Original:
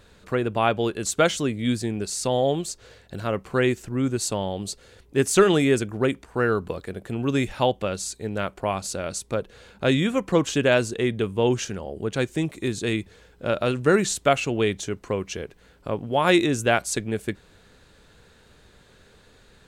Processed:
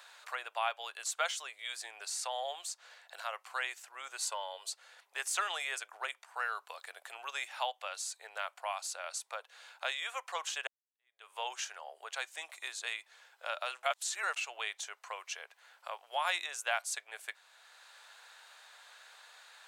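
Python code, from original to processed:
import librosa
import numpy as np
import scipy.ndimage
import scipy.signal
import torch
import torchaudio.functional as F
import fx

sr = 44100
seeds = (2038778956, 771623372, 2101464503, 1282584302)

y = fx.comb(x, sr, ms=2.0, depth=0.65, at=(4.22, 4.7))
y = fx.edit(y, sr, fx.fade_in_span(start_s=10.67, length_s=0.68, curve='exp'),
    fx.reverse_span(start_s=13.83, length_s=0.53), tone=tone)
y = scipy.signal.sosfilt(scipy.signal.butter(6, 710.0, 'highpass', fs=sr, output='sos'), y)
y = fx.band_squash(y, sr, depth_pct=40)
y = y * librosa.db_to_amplitude(-7.5)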